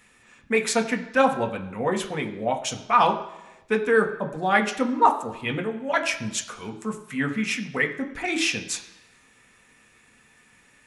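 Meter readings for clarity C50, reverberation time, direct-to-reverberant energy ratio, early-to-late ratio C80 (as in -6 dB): 11.5 dB, 1.0 s, 3.0 dB, 13.5 dB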